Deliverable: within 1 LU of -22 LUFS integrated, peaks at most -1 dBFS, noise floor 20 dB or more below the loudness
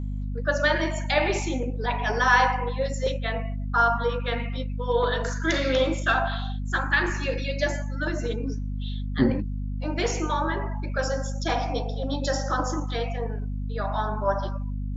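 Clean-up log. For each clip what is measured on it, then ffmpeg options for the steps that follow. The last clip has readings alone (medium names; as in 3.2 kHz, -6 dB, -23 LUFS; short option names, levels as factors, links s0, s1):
hum 50 Hz; highest harmonic 250 Hz; hum level -27 dBFS; loudness -26.5 LUFS; peak level -6.0 dBFS; loudness target -22.0 LUFS
-> -af "bandreject=f=50:t=h:w=4,bandreject=f=100:t=h:w=4,bandreject=f=150:t=h:w=4,bandreject=f=200:t=h:w=4,bandreject=f=250:t=h:w=4"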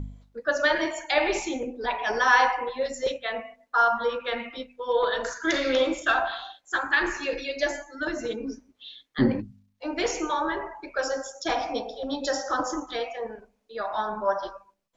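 hum not found; loudness -27.0 LUFS; peak level -7.0 dBFS; loudness target -22.0 LUFS
-> -af "volume=1.78"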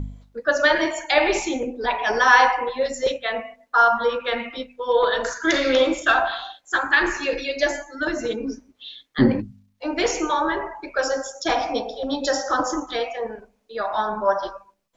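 loudness -22.0 LUFS; peak level -2.0 dBFS; noise floor -64 dBFS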